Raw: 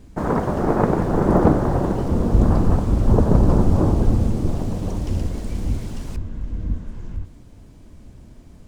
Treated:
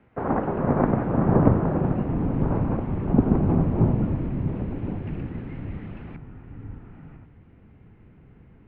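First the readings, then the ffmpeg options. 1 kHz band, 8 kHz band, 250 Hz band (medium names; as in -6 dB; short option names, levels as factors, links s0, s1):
-4.5 dB, no reading, -2.5 dB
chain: -af "highpass=f=380:t=q:w=0.5412,highpass=f=380:t=q:w=1.307,lowpass=f=2700:t=q:w=0.5176,lowpass=f=2700:t=q:w=0.7071,lowpass=f=2700:t=q:w=1.932,afreqshift=-200,asubboost=boost=4.5:cutoff=250"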